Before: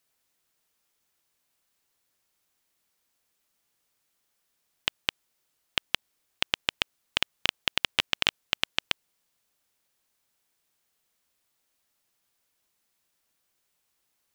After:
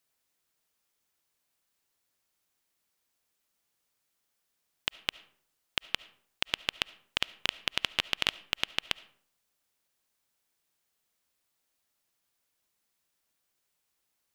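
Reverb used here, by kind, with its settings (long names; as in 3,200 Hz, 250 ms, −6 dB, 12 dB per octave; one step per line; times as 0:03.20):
comb and all-pass reverb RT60 0.58 s, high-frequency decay 0.6×, pre-delay 30 ms, DRR 19 dB
level −3.5 dB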